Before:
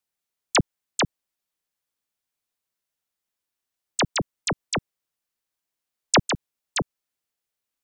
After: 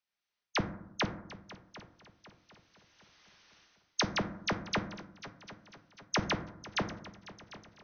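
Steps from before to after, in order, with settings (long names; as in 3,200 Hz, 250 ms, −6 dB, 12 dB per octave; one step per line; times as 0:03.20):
camcorder AGC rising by 14 dB per second
parametric band 2,200 Hz +7.5 dB 2.9 octaves
reversed playback
downward compressor, threshold −21 dBFS, peak gain reduction 20 dB
reversed playback
linear-phase brick-wall low-pass 6,400 Hz
echo machine with several playback heads 249 ms, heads second and third, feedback 47%, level −18 dB
on a send at −7.5 dB: convolution reverb RT60 0.80 s, pre-delay 5 ms
on the sum: level −8.5 dB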